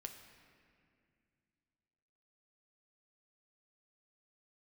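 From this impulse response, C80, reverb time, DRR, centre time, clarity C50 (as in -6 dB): 8.5 dB, 2.2 s, 4.0 dB, 36 ms, 7.0 dB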